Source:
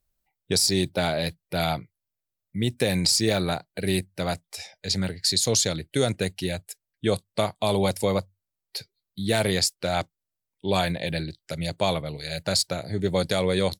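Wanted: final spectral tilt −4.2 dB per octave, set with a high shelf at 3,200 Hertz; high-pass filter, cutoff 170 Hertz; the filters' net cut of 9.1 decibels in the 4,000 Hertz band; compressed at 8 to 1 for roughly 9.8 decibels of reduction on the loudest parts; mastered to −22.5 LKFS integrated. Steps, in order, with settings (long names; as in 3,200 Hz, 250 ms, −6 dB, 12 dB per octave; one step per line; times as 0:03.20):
high-pass filter 170 Hz
high-shelf EQ 3,200 Hz −4 dB
parametric band 4,000 Hz −8 dB
downward compressor 8 to 1, threshold −30 dBFS
level +13.5 dB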